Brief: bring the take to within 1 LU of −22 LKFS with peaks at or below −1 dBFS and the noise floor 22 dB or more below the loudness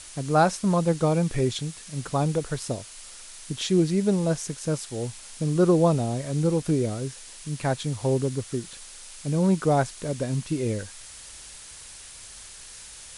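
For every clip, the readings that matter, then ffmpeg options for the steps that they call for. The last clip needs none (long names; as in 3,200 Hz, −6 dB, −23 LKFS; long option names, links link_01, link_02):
background noise floor −44 dBFS; target noise floor −48 dBFS; integrated loudness −25.5 LKFS; sample peak −9.0 dBFS; target loudness −22.0 LKFS
→ -af "afftdn=noise_reduction=6:noise_floor=-44"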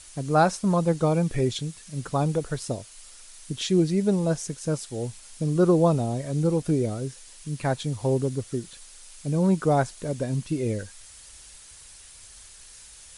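background noise floor −48 dBFS; integrated loudness −25.5 LKFS; sample peak −9.0 dBFS; target loudness −22.0 LKFS
→ -af "volume=3.5dB"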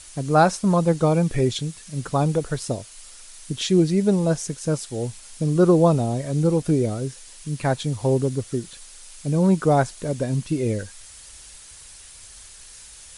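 integrated loudness −22.0 LKFS; sample peak −5.5 dBFS; background noise floor −44 dBFS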